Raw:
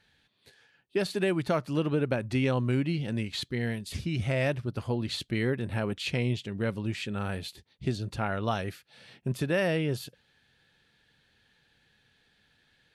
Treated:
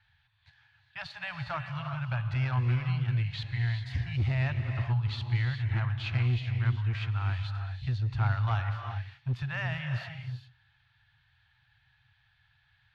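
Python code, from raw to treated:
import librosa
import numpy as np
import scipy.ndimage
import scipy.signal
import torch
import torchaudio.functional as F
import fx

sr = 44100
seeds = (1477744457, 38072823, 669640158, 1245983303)

y = scipy.signal.sosfilt(scipy.signal.cheby2(4, 50, [200.0, 470.0], 'bandstop', fs=sr, output='sos'), x)
y = fx.peak_eq(y, sr, hz=180.0, db=12.0, octaves=2.3)
y = fx.clip_asym(y, sr, top_db=-26.0, bottom_db=-21.5)
y = fx.air_absorb(y, sr, metres=230.0)
y = fx.rev_gated(y, sr, seeds[0], gate_ms=430, shape='rising', drr_db=5.5)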